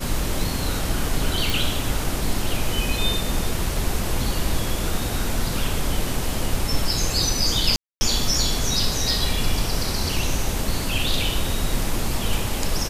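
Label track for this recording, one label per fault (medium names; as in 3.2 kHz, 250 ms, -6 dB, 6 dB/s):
1.500000	1.500000	pop
7.760000	8.010000	dropout 250 ms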